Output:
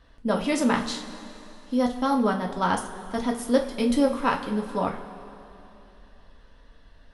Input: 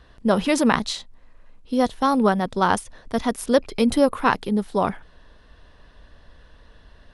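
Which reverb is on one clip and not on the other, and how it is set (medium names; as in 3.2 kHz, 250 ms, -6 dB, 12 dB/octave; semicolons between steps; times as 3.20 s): two-slope reverb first 0.27 s, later 3.1 s, from -18 dB, DRR 0.5 dB; trim -7 dB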